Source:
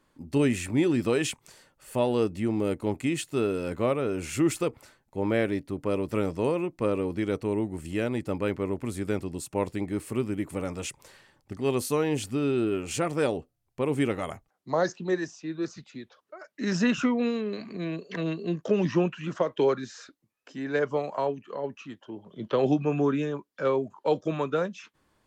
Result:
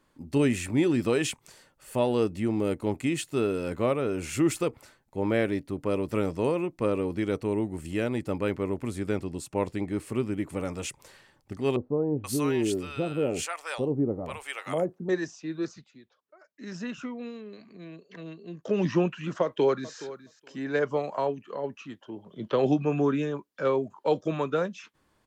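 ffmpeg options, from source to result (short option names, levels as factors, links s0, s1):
-filter_complex "[0:a]asettb=1/sr,asplit=3[s0][s1][s2];[s0]atrim=end=8.894[s3];[s1]atrim=start=8.89:end=10.58,asetpts=PTS-STARTPTS,afade=t=in:d=0.004:c=qsin,afade=t=out:st=1.686:d=0.004:c=qsin,highshelf=f=11000:g=-9[s4];[s2]atrim=start=10.576[s5];[s3][s4]acrossfade=d=0.004:c1=hsin:c2=qsin[s6];[s6][s5]acrossfade=d=0.004:c1=qsin:c2=hsin,asettb=1/sr,asplit=3[s7][s8][s9];[s7]atrim=end=11.764[s10];[s8]atrim=start=11.76:end=15.09,asetpts=PTS-STARTPTS,afade=t=in:d=0.004:c=qsin,afade=t=out:st=3.326:d=0.004:c=qsin,acrossover=split=760[s11][s12];[s12]adelay=480[s13];[s11][s13]amix=inputs=2:normalize=0,atrim=end_sample=146853[s14];[s9]atrim=start=15.086[s15];[s10][s14]acrossfade=d=0.004:c1=hsin:c2=qsin[s16];[s16][s15]acrossfade=d=0.004:c1=qsin:c2=hsin,asplit=2[s17][s18];[s18]afade=t=in:st=19.42:d=0.01,afade=t=out:st=19.97:d=0.01,aecho=0:1:420|840:0.16788|0.016788[s19];[s17][s19]amix=inputs=2:normalize=0,asplit=3[s20][s21][s22];[s20]atrim=end=15.92,asetpts=PTS-STARTPTS,afade=t=out:st=15.62:d=0.3:silence=0.266073[s23];[s21]atrim=start=15.92:end=18.53,asetpts=PTS-STARTPTS,volume=0.266[s24];[s22]atrim=start=18.53,asetpts=PTS-STARTPTS,afade=t=in:d=0.3:silence=0.266073[s25];[s23][s24][s25]concat=n=3:v=0:a=1"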